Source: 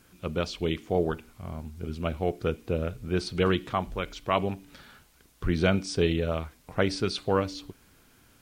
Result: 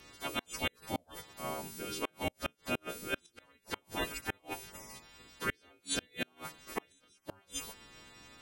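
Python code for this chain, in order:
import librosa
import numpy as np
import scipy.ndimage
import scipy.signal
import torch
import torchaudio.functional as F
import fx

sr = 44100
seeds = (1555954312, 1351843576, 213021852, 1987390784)

y = fx.freq_snap(x, sr, grid_st=2)
y = fx.spec_gate(y, sr, threshold_db=-10, keep='weak')
y = fx.gate_flip(y, sr, shuts_db=-26.0, range_db=-36)
y = y * librosa.db_to_amplitude(5.0)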